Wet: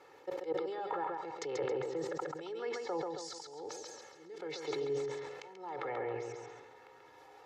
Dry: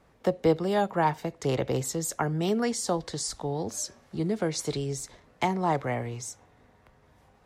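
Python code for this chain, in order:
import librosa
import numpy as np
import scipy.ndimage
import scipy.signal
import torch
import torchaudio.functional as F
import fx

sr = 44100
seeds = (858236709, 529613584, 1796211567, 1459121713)

y = fx.level_steps(x, sr, step_db=22)
y = fx.auto_swell(y, sr, attack_ms=613.0)
y = fx.env_lowpass_down(y, sr, base_hz=1600.0, full_db=-42.0)
y = scipy.signal.sosfilt(scipy.signal.butter(2, 340.0, 'highpass', fs=sr, output='sos'), y)
y = fx.peak_eq(y, sr, hz=9100.0, db=-11.0, octaves=0.44)
y = y + 0.89 * np.pad(y, (int(2.3 * sr / 1000.0), 0))[:len(y)]
y = fx.echo_feedback(y, sr, ms=136, feedback_pct=38, wet_db=-5.0)
y = fx.sustainer(y, sr, db_per_s=34.0)
y = y * 10.0 ** (7.5 / 20.0)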